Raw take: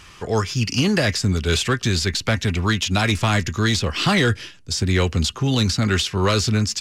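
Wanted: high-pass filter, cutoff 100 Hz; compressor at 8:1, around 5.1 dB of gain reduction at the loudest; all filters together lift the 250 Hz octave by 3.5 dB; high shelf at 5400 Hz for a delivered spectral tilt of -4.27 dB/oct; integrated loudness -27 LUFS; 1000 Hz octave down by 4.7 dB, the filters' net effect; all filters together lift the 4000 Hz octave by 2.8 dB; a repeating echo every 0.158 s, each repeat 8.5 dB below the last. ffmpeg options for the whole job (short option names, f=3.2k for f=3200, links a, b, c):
-af "highpass=100,equalizer=f=250:t=o:g=5,equalizer=f=1k:t=o:g=-7,equalizer=f=4k:t=o:g=5,highshelf=f=5.4k:g=-3,acompressor=threshold=-18dB:ratio=8,aecho=1:1:158|316|474|632:0.376|0.143|0.0543|0.0206,volume=-5dB"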